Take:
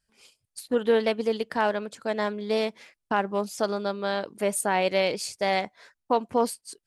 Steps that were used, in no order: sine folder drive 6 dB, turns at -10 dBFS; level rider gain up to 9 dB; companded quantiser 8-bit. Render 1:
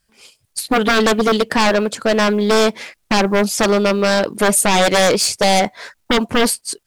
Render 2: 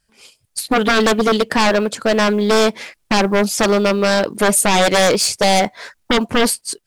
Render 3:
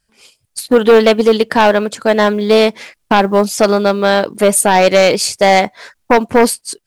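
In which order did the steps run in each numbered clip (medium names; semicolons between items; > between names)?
level rider > companded quantiser > sine folder; level rider > sine folder > companded quantiser; sine folder > level rider > companded quantiser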